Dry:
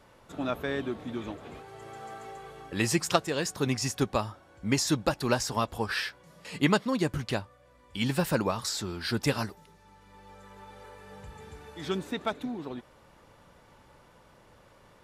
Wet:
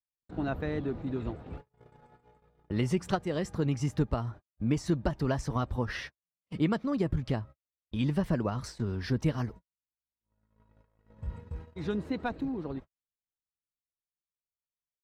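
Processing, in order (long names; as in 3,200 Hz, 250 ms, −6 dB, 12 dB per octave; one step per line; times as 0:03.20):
RIAA equalisation playback
harmonic and percussive parts rebalanced harmonic −3 dB
noise gate −39 dBFS, range −59 dB
downward compressor 2 to 1, threshold −25 dBFS, peak gain reduction 7 dB
pitch shifter +1.5 semitones
level −2.5 dB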